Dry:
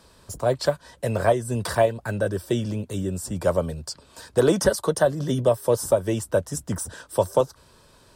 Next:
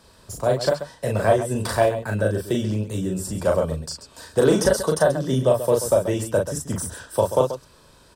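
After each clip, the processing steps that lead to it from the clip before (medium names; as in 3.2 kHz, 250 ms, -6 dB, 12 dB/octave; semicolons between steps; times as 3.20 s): loudspeakers at several distances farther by 13 m -3 dB, 46 m -11 dB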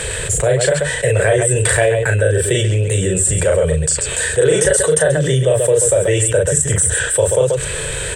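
FFT filter 150 Hz 0 dB, 230 Hz -23 dB, 460 Hz +4 dB, 680 Hz -7 dB, 1.1 kHz -13 dB, 1.8 kHz +7 dB, 3.3 kHz +2 dB, 5.1 kHz -14 dB, 8.1 kHz +11 dB, 12 kHz -13 dB; level flattener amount 70%; trim +2 dB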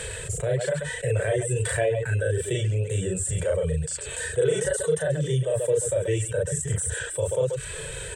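harmonic-percussive split percussive -12 dB; reverb removal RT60 0.55 s; trim -7.5 dB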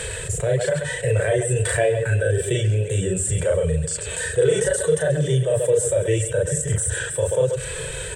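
reverberation RT60 2.9 s, pre-delay 44 ms, DRR 15 dB; trim +4.5 dB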